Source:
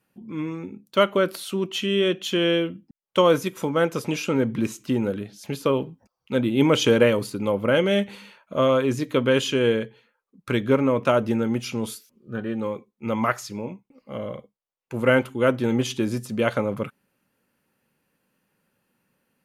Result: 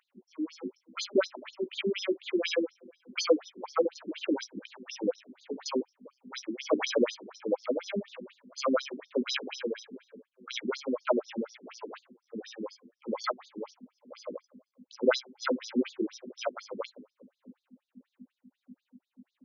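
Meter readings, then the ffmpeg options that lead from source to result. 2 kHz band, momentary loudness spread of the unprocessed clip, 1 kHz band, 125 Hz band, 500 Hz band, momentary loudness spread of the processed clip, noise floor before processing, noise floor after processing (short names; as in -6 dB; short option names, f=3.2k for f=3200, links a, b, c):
-10.0 dB, 14 LU, -10.5 dB, under -20 dB, -9.5 dB, 16 LU, -82 dBFS, under -85 dBFS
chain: -filter_complex "[0:a]acrusher=samples=8:mix=1:aa=0.000001,asplit=2[a][b];[b]adelay=396,lowpass=f=1.1k:p=1,volume=-21.5dB,asplit=2[c][d];[d]adelay=396,lowpass=f=1.1k:p=1,volume=0.4,asplit=2[e][f];[f]adelay=396,lowpass=f=1.1k:p=1,volume=0.4[g];[c][e][g]amix=inputs=3:normalize=0[h];[a][h]amix=inputs=2:normalize=0,aeval=exprs='val(0)+0.0224*(sin(2*PI*50*n/s)+sin(2*PI*2*50*n/s)/2+sin(2*PI*3*50*n/s)/3+sin(2*PI*4*50*n/s)/4+sin(2*PI*5*50*n/s)/5)':c=same,tremolo=f=1.6:d=0.55,asplit=2[i][j];[j]adelay=16,volume=-7dB[k];[i][k]amix=inputs=2:normalize=0,afftfilt=real='re*between(b*sr/1024,280*pow(5000/280,0.5+0.5*sin(2*PI*4.1*pts/sr))/1.41,280*pow(5000/280,0.5+0.5*sin(2*PI*4.1*pts/sr))*1.41)':imag='im*between(b*sr/1024,280*pow(5000/280,0.5+0.5*sin(2*PI*4.1*pts/sr))/1.41,280*pow(5000/280,0.5+0.5*sin(2*PI*4.1*pts/sr))*1.41)':win_size=1024:overlap=0.75"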